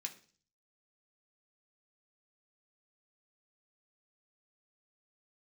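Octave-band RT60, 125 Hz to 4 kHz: 0.75 s, 0.55 s, 0.45 s, 0.40 s, 0.40 s, 0.55 s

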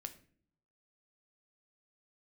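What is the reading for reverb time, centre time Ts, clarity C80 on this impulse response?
no single decay rate, 6 ms, 18.0 dB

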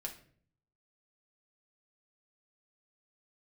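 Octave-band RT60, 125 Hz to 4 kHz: 0.95 s, 0.75 s, 0.60 s, 0.45 s, 0.45 s, 0.35 s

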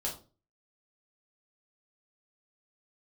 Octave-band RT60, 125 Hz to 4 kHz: 0.50 s, 0.45 s, 0.40 s, 0.30 s, 0.25 s, 0.25 s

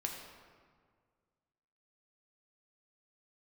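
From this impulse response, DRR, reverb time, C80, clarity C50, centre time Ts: 0.5 dB, 1.8 s, 5.0 dB, 3.5 dB, 56 ms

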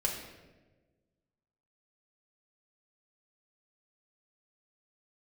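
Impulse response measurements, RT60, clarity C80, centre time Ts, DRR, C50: 1.3 s, 6.5 dB, 42 ms, -0.5 dB, 4.5 dB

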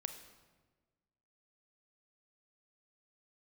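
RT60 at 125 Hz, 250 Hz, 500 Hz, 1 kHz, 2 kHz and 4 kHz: 1.7 s, 1.6 s, 1.5 s, 1.2 s, 1.1 s, 0.90 s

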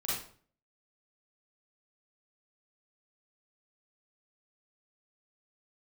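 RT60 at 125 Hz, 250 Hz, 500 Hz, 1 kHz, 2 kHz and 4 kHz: 0.60 s, 0.55 s, 0.50 s, 0.45 s, 0.40 s, 0.40 s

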